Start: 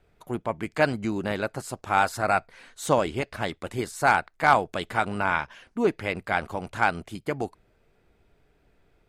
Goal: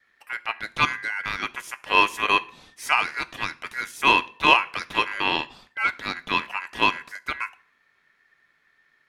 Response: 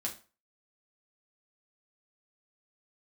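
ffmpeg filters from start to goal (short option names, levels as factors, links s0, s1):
-filter_complex "[0:a]adynamicequalizer=threshold=0.0126:dfrequency=810:dqfactor=3.6:tfrequency=810:tqfactor=3.6:attack=5:release=100:ratio=0.375:range=4:mode=boostabove:tftype=bell,aeval=exprs='val(0)*sin(2*PI*1800*n/s)':c=same,asplit=2[s0][s1];[1:a]atrim=start_sample=2205,asetrate=29988,aresample=44100[s2];[s1][s2]afir=irnorm=-1:irlink=0,volume=0.168[s3];[s0][s3]amix=inputs=2:normalize=0"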